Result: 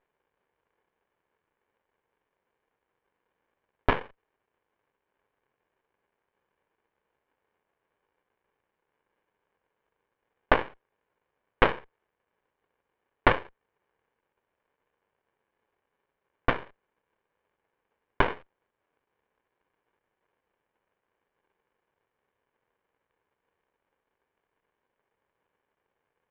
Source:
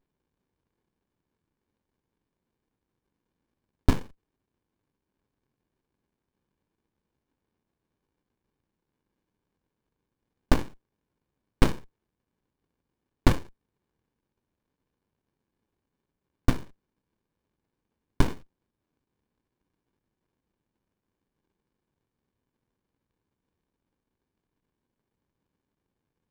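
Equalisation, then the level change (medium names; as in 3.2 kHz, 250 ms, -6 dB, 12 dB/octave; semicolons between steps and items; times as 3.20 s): four-pole ladder low-pass 3.5 kHz, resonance 60%; high-order bell 950 Hz +15.5 dB 2.8 oct; +2.5 dB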